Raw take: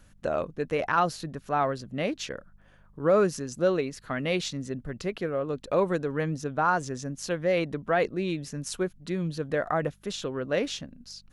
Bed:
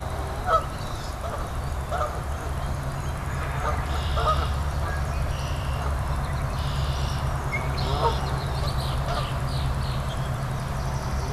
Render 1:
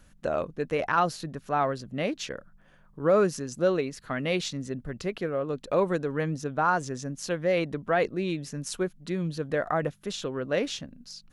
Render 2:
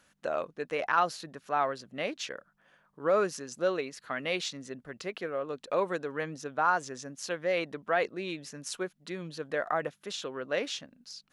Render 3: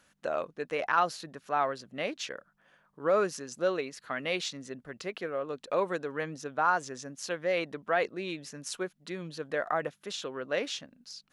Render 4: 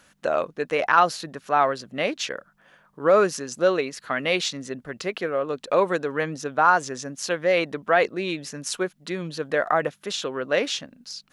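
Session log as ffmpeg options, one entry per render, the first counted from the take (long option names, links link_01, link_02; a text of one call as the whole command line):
ffmpeg -i in.wav -af "bandreject=frequency=50:width_type=h:width=4,bandreject=frequency=100:width_type=h:width=4" out.wav
ffmpeg -i in.wav -af "highpass=frequency=680:poles=1,highshelf=frequency=7900:gain=-6" out.wav
ffmpeg -i in.wav -af anull out.wav
ffmpeg -i in.wav -af "volume=8.5dB" out.wav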